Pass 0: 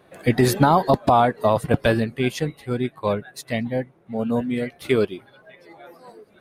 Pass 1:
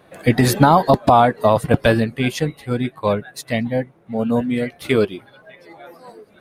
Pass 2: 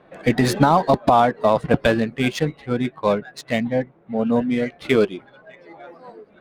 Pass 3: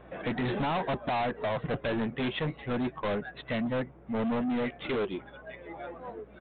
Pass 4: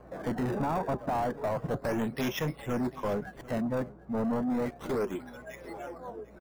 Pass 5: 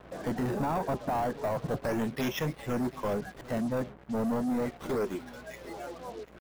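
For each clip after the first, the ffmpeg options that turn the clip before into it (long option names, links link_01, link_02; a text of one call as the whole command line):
ffmpeg -i in.wav -af "bandreject=frequency=380:width=12,volume=4dB" out.wav
ffmpeg -i in.wav -af "equalizer=frequency=100:width_type=o:width=0.46:gain=-10.5,alimiter=limit=-4.5dB:level=0:latency=1:release=392,adynamicsmooth=sensitivity=4.5:basefreq=3000" out.wav
ffmpeg -i in.wav -af "alimiter=limit=-10dB:level=0:latency=1:release=283,aeval=exprs='val(0)+0.00158*(sin(2*PI*60*n/s)+sin(2*PI*2*60*n/s)/2+sin(2*PI*3*60*n/s)/3+sin(2*PI*4*60*n/s)/4+sin(2*PI*5*60*n/s)/5)':channel_layout=same,aresample=8000,asoftclip=type=tanh:threshold=-27dB,aresample=44100" out.wav
ffmpeg -i in.wav -filter_complex "[0:a]acrossover=split=330|1700[link_01][link_02][link_03];[link_03]acrusher=samples=24:mix=1:aa=0.000001:lfo=1:lforange=38.4:lforate=0.32[link_04];[link_01][link_02][link_04]amix=inputs=3:normalize=0,aecho=1:1:745:0.106" out.wav
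ffmpeg -i in.wav -af "acrusher=bits=7:mix=0:aa=0.5" out.wav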